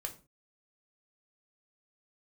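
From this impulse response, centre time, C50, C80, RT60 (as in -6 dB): 9 ms, 14.0 dB, 19.5 dB, not exponential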